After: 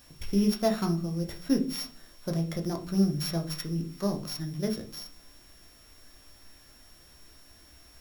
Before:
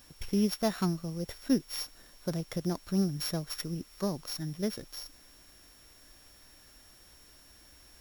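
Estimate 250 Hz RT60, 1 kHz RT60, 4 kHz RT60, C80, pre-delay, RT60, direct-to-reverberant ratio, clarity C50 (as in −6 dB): 0.65 s, 0.35 s, 0.30 s, 18.5 dB, 12 ms, 0.40 s, 3.0 dB, 12.5 dB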